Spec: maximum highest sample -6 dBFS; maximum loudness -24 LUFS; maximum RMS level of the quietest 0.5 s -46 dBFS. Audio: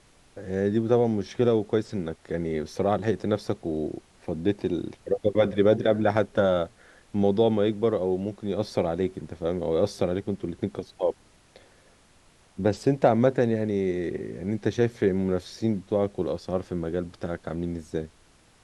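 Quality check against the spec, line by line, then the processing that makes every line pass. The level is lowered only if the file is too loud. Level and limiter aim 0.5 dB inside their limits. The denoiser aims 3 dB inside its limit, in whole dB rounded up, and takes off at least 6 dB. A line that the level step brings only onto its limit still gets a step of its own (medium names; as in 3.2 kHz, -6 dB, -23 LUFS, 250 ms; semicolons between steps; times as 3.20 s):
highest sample -6.5 dBFS: pass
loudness -26.5 LUFS: pass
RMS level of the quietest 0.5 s -58 dBFS: pass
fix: none needed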